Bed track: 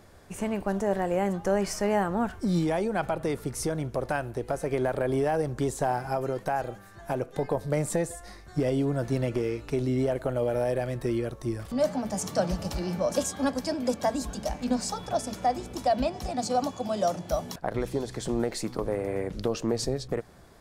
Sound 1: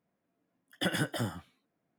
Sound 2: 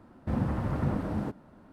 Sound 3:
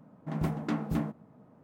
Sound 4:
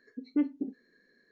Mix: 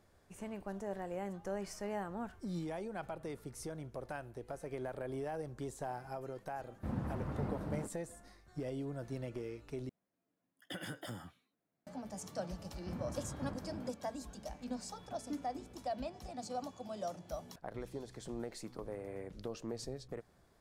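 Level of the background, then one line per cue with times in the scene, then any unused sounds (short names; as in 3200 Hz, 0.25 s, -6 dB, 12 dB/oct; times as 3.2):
bed track -14.5 dB
6.56 add 2 -9.5 dB
9.89 replace with 1 -7 dB + compressor 2.5:1, threshold -35 dBFS
12.59 add 2 -15 dB
14.94 add 4 -14.5 dB
not used: 3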